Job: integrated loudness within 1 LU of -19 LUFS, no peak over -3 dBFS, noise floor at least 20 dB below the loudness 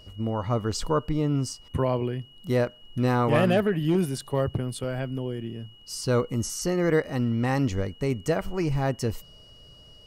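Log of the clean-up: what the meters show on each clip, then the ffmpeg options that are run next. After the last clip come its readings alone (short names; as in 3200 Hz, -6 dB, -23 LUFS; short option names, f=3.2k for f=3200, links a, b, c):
steady tone 2900 Hz; tone level -51 dBFS; loudness -27.0 LUFS; peak -9.0 dBFS; loudness target -19.0 LUFS
-> -af "bandreject=f=2.9k:w=30"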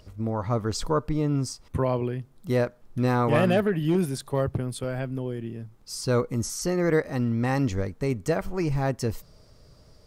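steady tone none; loudness -27.0 LUFS; peak -9.0 dBFS; loudness target -19.0 LUFS
-> -af "volume=8dB,alimiter=limit=-3dB:level=0:latency=1"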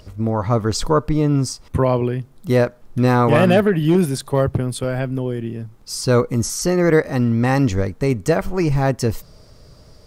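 loudness -19.0 LUFS; peak -3.0 dBFS; noise floor -47 dBFS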